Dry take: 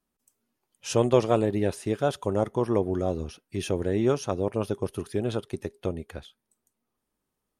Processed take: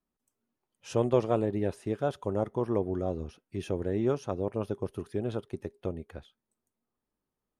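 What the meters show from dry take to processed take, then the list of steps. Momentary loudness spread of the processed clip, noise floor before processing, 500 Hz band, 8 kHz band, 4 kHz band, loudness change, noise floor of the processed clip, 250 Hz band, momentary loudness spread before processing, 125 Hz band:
13 LU, -82 dBFS, -4.5 dB, under -10 dB, -10.0 dB, -4.5 dB, under -85 dBFS, -4.0 dB, 13 LU, -4.0 dB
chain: high shelf 2600 Hz -9.5 dB; gain -4 dB

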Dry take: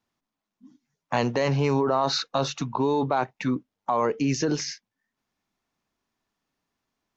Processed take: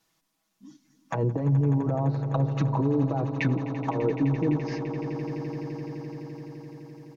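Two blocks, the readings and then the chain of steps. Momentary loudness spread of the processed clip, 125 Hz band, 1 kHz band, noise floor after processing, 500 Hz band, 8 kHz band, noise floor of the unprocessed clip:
15 LU, +6.5 dB, -7.5 dB, -76 dBFS, -4.0 dB, n/a, under -85 dBFS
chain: treble ducked by the level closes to 310 Hz, closed at -22.5 dBFS; high shelf 3900 Hz +11 dB; comb 6.2 ms, depth 76%; limiter -21 dBFS, peak gain reduction 10.5 dB; on a send: swelling echo 85 ms, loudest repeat 8, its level -16 dB; on the sum: gain +4 dB

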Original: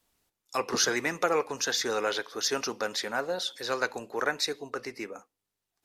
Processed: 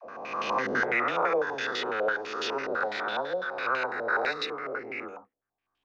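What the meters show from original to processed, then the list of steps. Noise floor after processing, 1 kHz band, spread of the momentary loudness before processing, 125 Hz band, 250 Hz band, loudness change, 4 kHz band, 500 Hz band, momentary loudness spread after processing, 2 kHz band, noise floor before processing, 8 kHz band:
under -85 dBFS, +4.0 dB, 11 LU, -2.5 dB, -2.0 dB, +0.5 dB, -5.5 dB, +0.5 dB, 9 LU, +4.0 dB, under -85 dBFS, -19.0 dB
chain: spectral swells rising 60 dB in 1.71 s; dispersion lows, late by 58 ms, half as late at 450 Hz; stepped low-pass 12 Hz 630–3000 Hz; gain -7 dB

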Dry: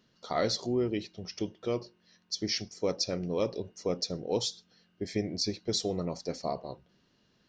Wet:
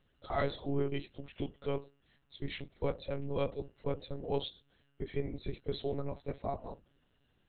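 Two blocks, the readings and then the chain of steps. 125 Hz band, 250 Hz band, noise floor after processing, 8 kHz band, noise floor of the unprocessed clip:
-1.0 dB, -6.5 dB, -73 dBFS, under -40 dB, -70 dBFS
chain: monotone LPC vocoder at 8 kHz 140 Hz; gain -3 dB

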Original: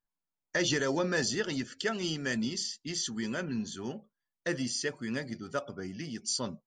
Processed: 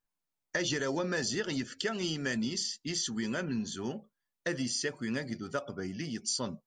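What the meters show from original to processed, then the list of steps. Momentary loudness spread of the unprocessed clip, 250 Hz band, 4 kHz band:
10 LU, -0.5 dB, -0.5 dB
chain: compressor 4:1, threshold -31 dBFS, peak gain reduction 6 dB; gain +2 dB

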